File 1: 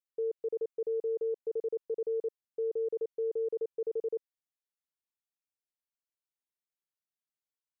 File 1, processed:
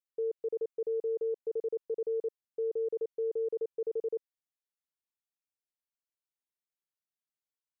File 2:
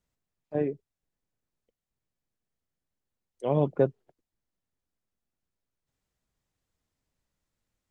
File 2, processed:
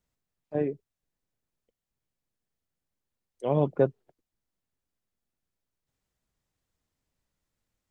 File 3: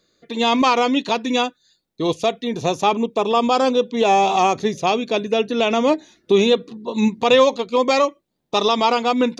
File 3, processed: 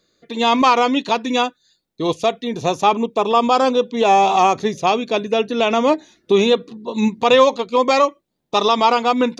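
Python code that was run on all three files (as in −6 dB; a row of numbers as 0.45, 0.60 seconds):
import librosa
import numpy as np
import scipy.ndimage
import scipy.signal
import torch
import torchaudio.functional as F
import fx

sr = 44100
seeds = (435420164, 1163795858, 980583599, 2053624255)

y = fx.dynamic_eq(x, sr, hz=1100.0, q=1.0, threshold_db=-27.0, ratio=4.0, max_db=4)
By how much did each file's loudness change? 0.0, 0.0, +1.5 LU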